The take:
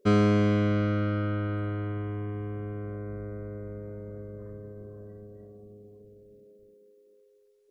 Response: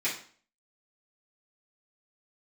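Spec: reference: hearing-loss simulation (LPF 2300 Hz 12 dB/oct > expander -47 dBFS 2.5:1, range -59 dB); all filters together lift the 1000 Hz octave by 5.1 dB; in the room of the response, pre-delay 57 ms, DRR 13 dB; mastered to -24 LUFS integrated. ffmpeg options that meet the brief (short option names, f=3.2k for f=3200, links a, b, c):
-filter_complex "[0:a]equalizer=f=1k:t=o:g=7.5,asplit=2[a][b];[1:a]atrim=start_sample=2205,adelay=57[c];[b][c]afir=irnorm=-1:irlink=0,volume=-21.5dB[d];[a][d]amix=inputs=2:normalize=0,lowpass=2.3k,agate=range=-59dB:threshold=-47dB:ratio=2.5,volume=5.5dB"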